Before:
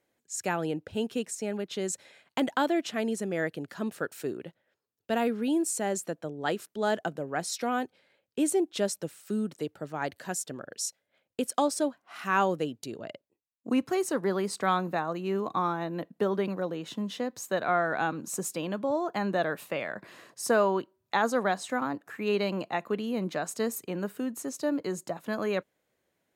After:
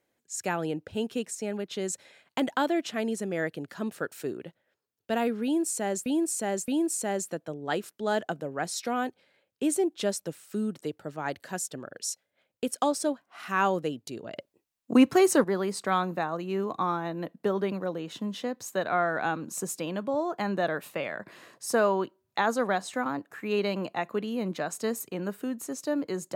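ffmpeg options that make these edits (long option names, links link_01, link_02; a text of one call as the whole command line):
ffmpeg -i in.wav -filter_complex "[0:a]asplit=5[link_01][link_02][link_03][link_04][link_05];[link_01]atrim=end=6.062[link_06];[link_02]atrim=start=5.438:end=6.062[link_07];[link_03]atrim=start=5.438:end=13.122[link_08];[link_04]atrim=start=13.118:end=14.202,asetpts=PTS-STARTPTS,volume=7.5dB[link_09];[link_05]atrim=start=14.198[link_10];[link_06][link_07]acrossfade=duration=0.004:curve1=hsin:curve2=hsin[link_11];[link_11][link_08]acrossfade=duration=0.004:curve1=hsin:curve2=hsin[link_12];[link_12][link_09]acrossfade=duration=0.004:curve1=hsin:curve2=hsin[link_13];[link_13][link_10]acrossfade=duration=0.004:curve1=hsin:curve2=hsin" out.wav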